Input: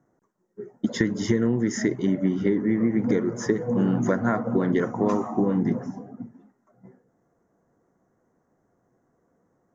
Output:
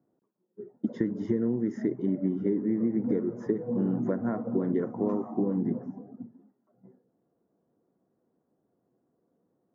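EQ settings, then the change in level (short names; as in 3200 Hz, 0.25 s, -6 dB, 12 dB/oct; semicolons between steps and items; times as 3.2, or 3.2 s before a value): band-pass 300 Hz, Q 0.73; -4.0 dB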